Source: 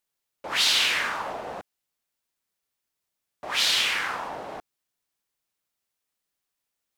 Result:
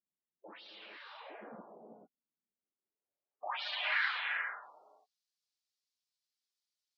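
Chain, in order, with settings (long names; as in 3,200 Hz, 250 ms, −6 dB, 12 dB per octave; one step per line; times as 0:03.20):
gate on every frequency bin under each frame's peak −10 dB strong
band-pass filter sweep 220 Hz → 4,700 Hz, 0:02.44–0:04.76
reverb whose tail is shaped and stops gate 470 ms rising, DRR 3 dB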